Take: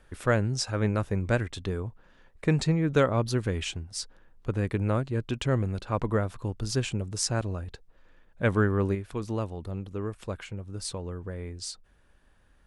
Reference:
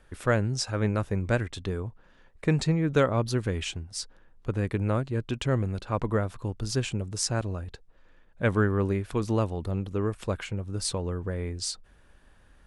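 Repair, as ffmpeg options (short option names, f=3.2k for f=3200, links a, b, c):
-af "asetnsamples=n=441:p=0,asendcmd='8.95 volume volume 5dB',volume=0dB"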